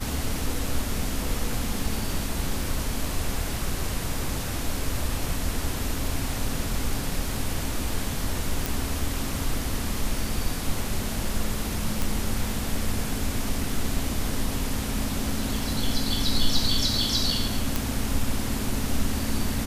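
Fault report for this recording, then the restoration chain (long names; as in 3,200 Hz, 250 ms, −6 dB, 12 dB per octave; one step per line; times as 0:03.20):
0:08.66: click
0:12.02: click
0:17.76: click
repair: click removal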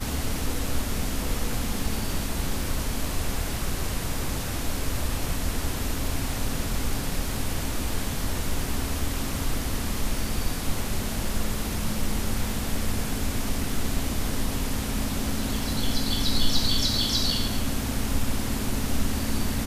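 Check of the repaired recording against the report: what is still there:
none of them is left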